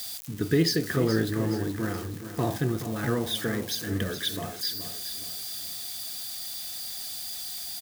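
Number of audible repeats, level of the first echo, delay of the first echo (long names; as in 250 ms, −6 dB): 4, −11.0 dB, 423 ms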